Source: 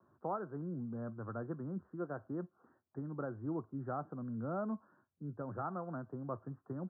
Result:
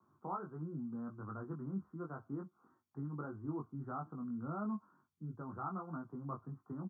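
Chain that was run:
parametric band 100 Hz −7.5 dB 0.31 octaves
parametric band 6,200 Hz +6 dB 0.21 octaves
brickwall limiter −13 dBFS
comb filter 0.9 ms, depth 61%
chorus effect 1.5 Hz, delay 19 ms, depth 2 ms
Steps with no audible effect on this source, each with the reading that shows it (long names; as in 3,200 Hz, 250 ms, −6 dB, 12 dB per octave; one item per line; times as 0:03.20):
parametric band 6,200 Hz: nothing at its input above 1,600 Hz
brickwall limiter −13 dBFS: peak of its input −26.5 dBFS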